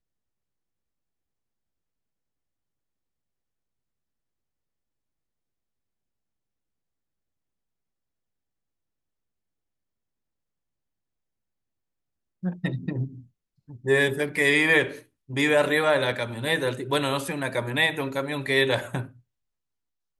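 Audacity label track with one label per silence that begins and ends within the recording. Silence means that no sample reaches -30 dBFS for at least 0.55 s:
13.070000	13.860000	silence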